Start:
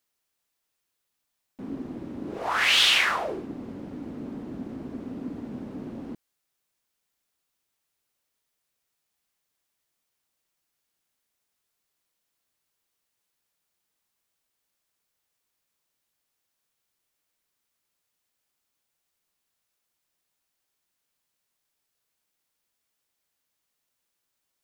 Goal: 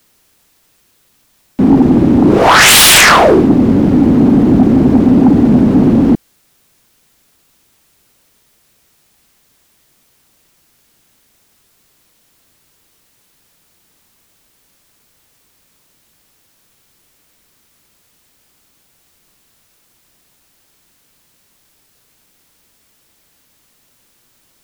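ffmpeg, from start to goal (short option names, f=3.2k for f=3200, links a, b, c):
-filter_complex "[0:a]acrossover=split=370|660|3600[a][b][c][d];[a]acontrast=84[e];[e][b][c][d]amix=inputs=4:normalize=0,aeval=exprs='0.473*sin(PI/2*6.31*val(0)/0.473)':c=same,volume=4.5dB"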